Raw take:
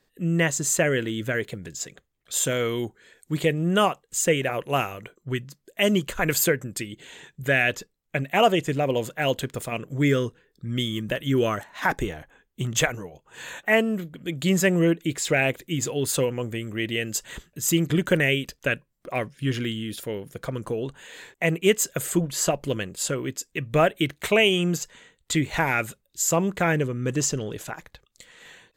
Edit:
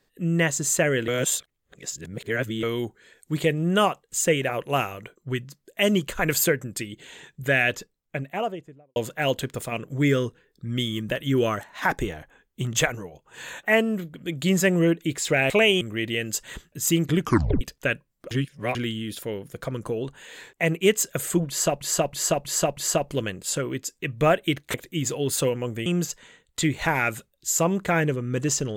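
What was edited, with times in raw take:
0:01.08–0:02.63: reverse
0:07.73–0:08.96: fade out and dull
0:15.50–0:16.62: swap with 0:24.27–0:24.58
0:18.01: tape stop 0.41 s
0:19.12–0:19.56: reverse
0:22.30–0:22.62: repeat, 5 plays

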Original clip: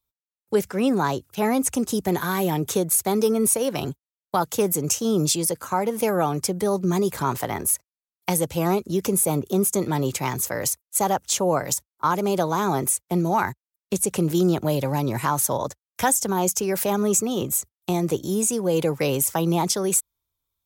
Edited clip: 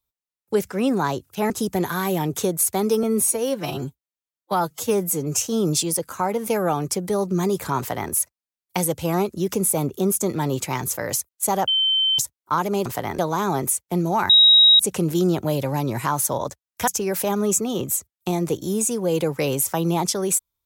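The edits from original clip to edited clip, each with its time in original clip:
0:01.50–0:01.82: remove
0:03.35–0:04.94: time-stretch 1.5×
0:07.31–0:07.64: duplicate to 0:12.38
0:11.20–0:11.71: beep over 3,090 Hz −16.5 dBFS
0:13.49–0:13.99: beep over 3,810 Hz −9 dBFS
0:16.07–0:16.49: remove

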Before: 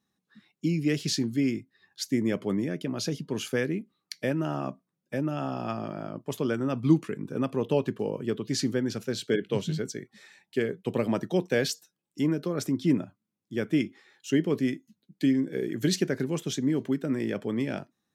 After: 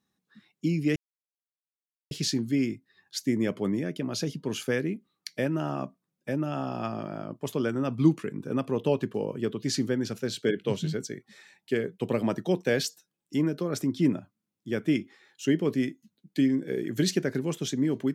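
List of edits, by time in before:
0:00.96: splice in silence 1.15 s

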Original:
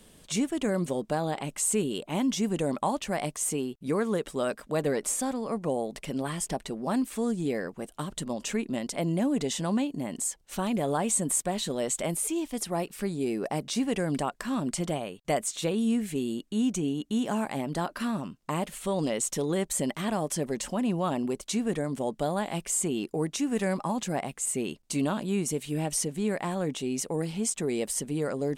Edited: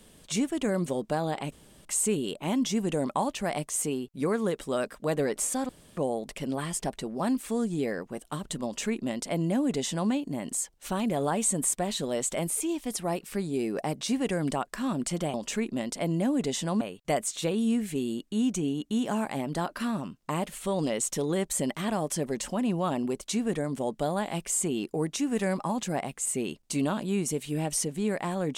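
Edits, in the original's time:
0:01.52: splice in room tone 0.33 s
0:05.36–0:05.64: fill with room tone
0:08.31–0:09.78: duplicate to 0:15.01

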